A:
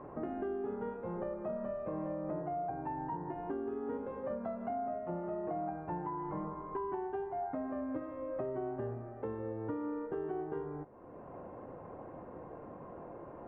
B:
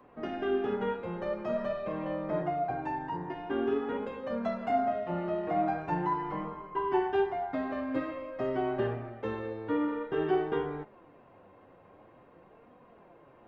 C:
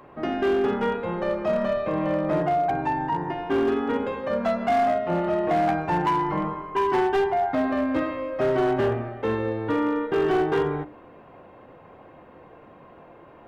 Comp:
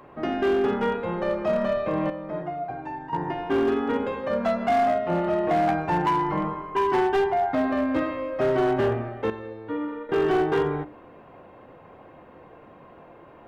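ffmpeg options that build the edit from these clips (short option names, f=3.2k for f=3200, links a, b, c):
-filter_complex "[1:a]asplit=2[a][b];[2:a]asplit=3[c][d][e];[c]atrim=end=2.102[f];[a]atrim=start=2.098:end=3.132[g];[d]atrim=start=3.128:end=9.302[h];[b]atrim=start=9.298:end=10.092[i];[e]atrim=start=10.088[j];[f][g]acrossfade=d=0.004:c1=hsin:c2=hsin[k];[k][h]acrossfade=d=0.004:c1=hsin:c2=hsin[l];[l][i]acrossfade=d=0.004:c1=hsin:c2=hsin[m];[m][j]acrossfade=d=0.004:c1=hsin:c2=hsin"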